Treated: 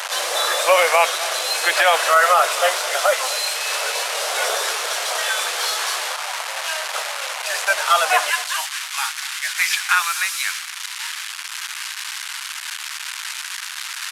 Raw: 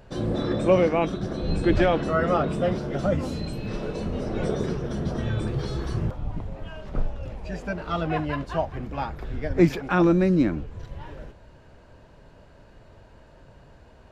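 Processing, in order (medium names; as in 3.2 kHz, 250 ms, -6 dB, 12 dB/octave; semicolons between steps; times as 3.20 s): one-bit delta coder 64 kbps, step -33 dBFS; Bessel high-pass 1.1 kHz, order 8, from 8.29 s 2 kHz; delay 249 ms -18 dB; loudness maximiser +22 dB; trim -3.5 dB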